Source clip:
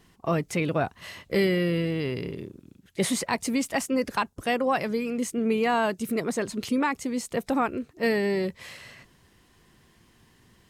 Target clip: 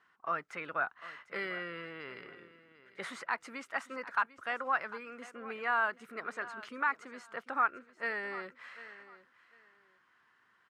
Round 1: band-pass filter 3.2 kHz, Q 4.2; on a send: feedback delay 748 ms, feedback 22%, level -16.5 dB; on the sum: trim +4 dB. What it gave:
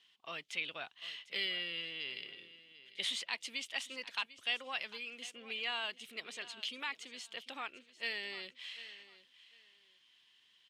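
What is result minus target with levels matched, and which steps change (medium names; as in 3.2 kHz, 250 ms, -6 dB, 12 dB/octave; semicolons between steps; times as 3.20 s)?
4 kHz band +18.0 dB
change: band-pass filter 1.4 kHz, Q 4.2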